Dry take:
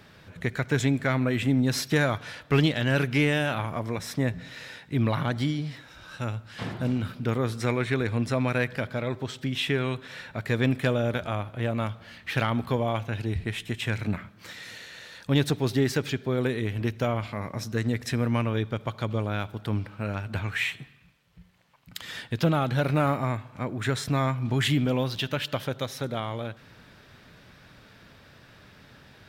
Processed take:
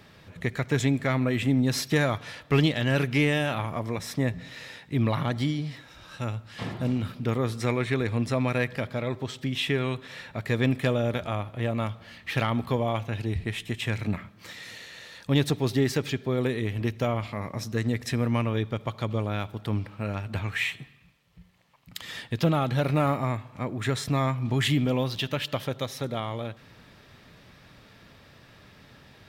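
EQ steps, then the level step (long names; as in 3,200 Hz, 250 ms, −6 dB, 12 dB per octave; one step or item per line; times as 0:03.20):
notch filter 1,500 Hz, Q 10
0.0 dB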